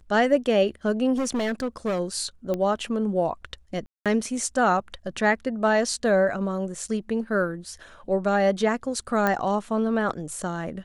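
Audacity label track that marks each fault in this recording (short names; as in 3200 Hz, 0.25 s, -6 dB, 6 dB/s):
1.170000	2.000000	clipped -22 dBFS
2.540000	2.540000	pop -16 dBFS
3.860000	4.060000	gap 0.197 s
9.270000	9.270000	pop -10 dBFS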